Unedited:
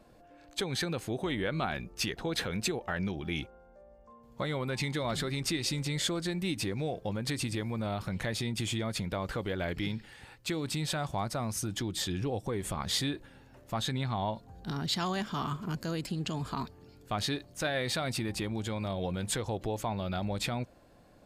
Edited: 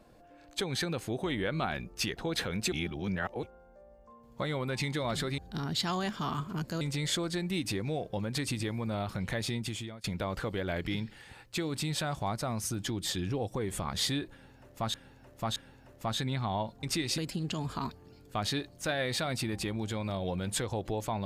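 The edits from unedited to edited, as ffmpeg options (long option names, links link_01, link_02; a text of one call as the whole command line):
ffmpeg -i in.wav -filter_complex "[0:a]asplit=10[link_01][link_02][link_03][link_04][link_05][link_06][link_07][link_08][link_09][link_10];[link_01]atrim=end=2.722[link_11];[link_02]atrim=start=2.718:end=3.432,asetpts=PTS-STARTPTS,areverse[link_12];[link_03]atrim=start=3.428:end=5.382[link_13];[link_04]atrim=start=14.508:end=15.942[link_14];[link_05]atrim=start=5.728:end=8.96,asetpts=PTS-STARTPTS,afade=type=out:start_time=2.722:duration=0.51:silence=0.0841395[link_15];[link_06]atrim=start=8.96:end=13.862,asetpts=PTS-STARTPTS,afade=type=in:duration=0.004:curve=hsin:silence=0.0841395[link_16];[link_07]atrim=start=13.238:end=13.862[link_17];[link_08]atrim=start=13.238:end=14.512[link_18];[link_09]atrim=start=5.378:end=5.732[link_19];[link_10]atrim=start=15.938[link_20];[link_11][link_12]acrossfade=duration=0.004:curve1=hsin:curve2=hsin[link_21];[link_21][link_13]acrossfade=duration=0.004:curve1=hsin:curve2=hsin[link_22];[link_22][link_14]acrossfade=duration=0.004:curve1=hsin:curve2=hsin[link_23];[link_15][link_16]concat=n=2:v=0:a=1[link_24];[link_23][link_24]acrossfade=duration=0.004:curve1=hsin:curve2=hsin[link_25];[link_25][link_17]acrossfade=duration=0.004:curve1=hsin:curve2=hsin[link_26];[link_26][link_18]acrossfade=duration=0.004:curve1=hsin:curve2=hsin[link_27];[link_27][link_19]acrossfade=duration=0.004:curve1=hsin:curve2=hsin[link_28];[link_28][link_20]acrossfade=duration=0.004:curve1=hsin:curve2=hsin" out.wav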